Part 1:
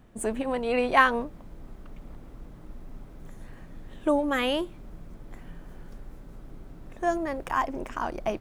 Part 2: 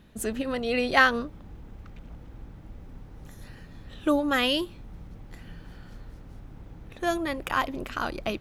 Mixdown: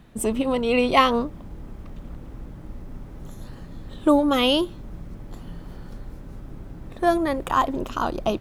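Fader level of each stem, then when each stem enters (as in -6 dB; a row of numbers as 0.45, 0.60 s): +2.5, +0.5 dB; 0.00, 0.00 s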